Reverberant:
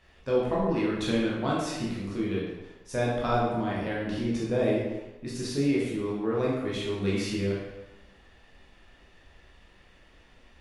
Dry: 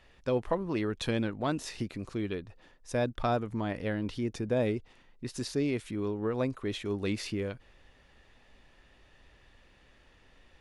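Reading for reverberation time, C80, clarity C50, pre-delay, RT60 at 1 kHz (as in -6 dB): 1.1 s, 3.5 dB, 0.5 dB, 11 ms, 1.1 s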